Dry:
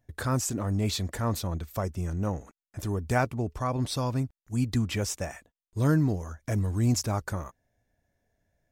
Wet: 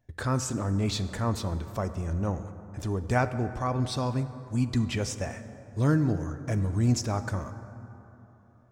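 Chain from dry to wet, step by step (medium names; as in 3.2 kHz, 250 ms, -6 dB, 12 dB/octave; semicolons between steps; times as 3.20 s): peaking EQ 13 kHz -14 dB 0.64 oct; plate-style reverb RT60 3.5 s, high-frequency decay 0.4×, DRR 10.5 dB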